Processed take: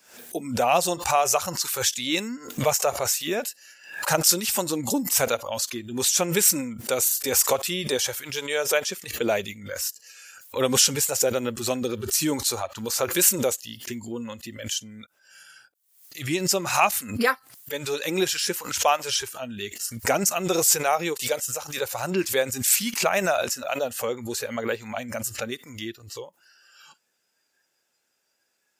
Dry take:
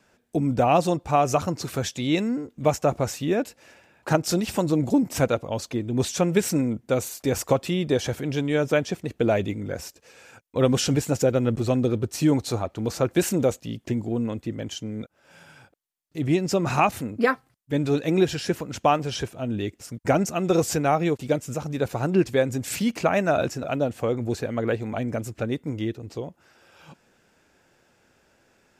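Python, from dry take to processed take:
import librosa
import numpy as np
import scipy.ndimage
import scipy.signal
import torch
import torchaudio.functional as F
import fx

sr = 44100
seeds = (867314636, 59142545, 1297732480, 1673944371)

y = fx.noise_reduce_blind(x, sr, reduce_db=15)
y = fx.riaa(y, sr, side='recording')
y = fx.pre_swell(y, sr, db_per_s=99.0)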